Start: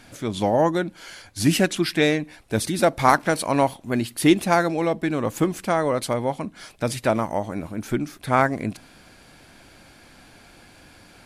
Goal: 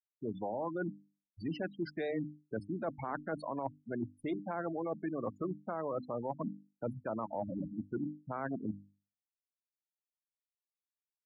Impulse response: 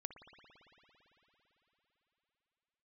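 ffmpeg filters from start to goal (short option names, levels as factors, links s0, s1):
-filter_complex "[0:a]aeval=exprs='if(lt(val(0),0),0.708*val(0),val(0))':c=same,afftfilt=real='re*gte(hypot(re,im),0.112)':imag='im*gte(hypot(re,im),0.112)':win_size=1024:overlap=0.75,highpass=60,highshelf=f=1800:t=q:w=1.5:g=-8.5,bandreject=f=50:t=h:w=6,bandreject=f=100:t=h:w=6,bandreject=f=150:t=h:w=6,bandreject=f=200:t=h:w=6,bandreject=f=250:t=h:w=6,bandreject=f=300:t=h:w=6,acrossover=split=130|410[s0][s1][s2];[s0]acompressor=threshold=0.00398:ratio=4[s3];[s1]acompressor=threshold=0.0355:ratio=4[s4];[s2]acompressor=threshold=0.0891:ratio=4[s5];[s3][s4][s5]amix=inputs=3:normalize=0,alimiter=limit=0.126:level=0:latency=1:release=89,areverse,acompressor=threshold=0.02:ratio=6,areverse,lowpass=4800"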